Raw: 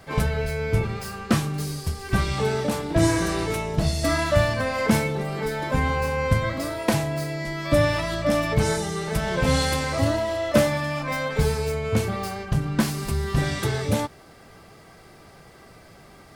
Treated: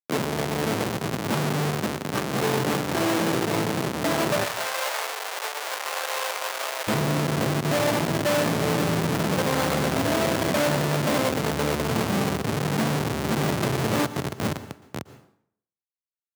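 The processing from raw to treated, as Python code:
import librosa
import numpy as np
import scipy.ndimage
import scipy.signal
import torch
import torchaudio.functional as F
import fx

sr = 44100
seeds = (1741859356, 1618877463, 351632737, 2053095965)

y = fx.echo_feedback(x, sr, ms=526, feedback_pct=47, wet_db=-8.5)
y = fx.dynamic_eq(y, sr, hz=6300.0, q=1.2, threshold_db=-44.0, ratio=4.0, max_db=-3)
y = fx.rider(y, sr, range_db=4, speed_s=2.0)
y = fx.schmitt(y, sr, flips_db=-23.5)
y = fx.bessel_highpass(y, sr, hz=fx.steps((0.0, 190.0), (4.44, 860.0), (6.87, 160.0)), order=8)
y = fx.rev_plate(y, sr, seeds[0], rt60_s=0.64, hf_ratio=0.8, predelay_ms=105, drr_db=14.0)
y = y * librosa.db_to_amplitude(2.5)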